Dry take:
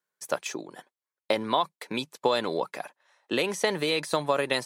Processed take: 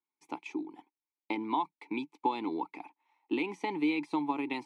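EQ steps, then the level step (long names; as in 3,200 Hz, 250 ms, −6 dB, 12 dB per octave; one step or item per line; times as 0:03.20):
formant filter u
+7.0 dB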